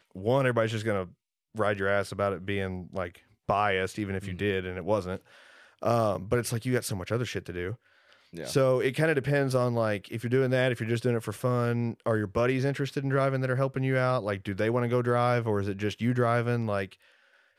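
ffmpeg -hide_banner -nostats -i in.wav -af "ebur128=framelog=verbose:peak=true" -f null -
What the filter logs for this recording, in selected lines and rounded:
Integrated loudness:
  I:         -28.3 LUFS
  Threshold: -38.8 LUFS
Loudness range:
  LRA:         3.4 LU
  Threshold: -48.8 LUFS
  LRA low:   -30.7 LUFS
  LRA high:  -27.3 LUFS
True peak:
  Peak:      -10.1 dBFS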